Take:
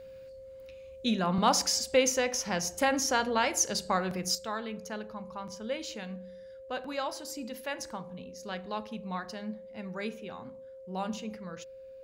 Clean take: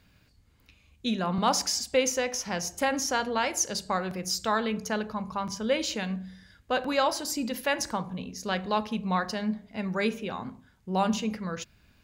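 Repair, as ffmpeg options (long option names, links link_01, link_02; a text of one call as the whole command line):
ffmpeg -i in.wav -af "bandreject=frequency=530:width=30,asetnsamples=nb_out_samples=441:pad=0,asendcmd='4.35 volume volume 9dB',volume=0dB" out.wav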